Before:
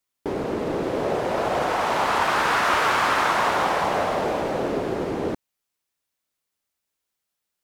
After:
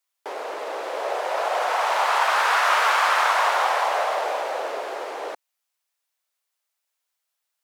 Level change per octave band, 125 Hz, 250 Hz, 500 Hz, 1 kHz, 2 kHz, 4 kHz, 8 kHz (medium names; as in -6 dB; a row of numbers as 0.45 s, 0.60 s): under -40 dB, under -15 dB, -2.5 dB, +1.5 dB, +1.5 dB, +1.5 dB, +1.5 dB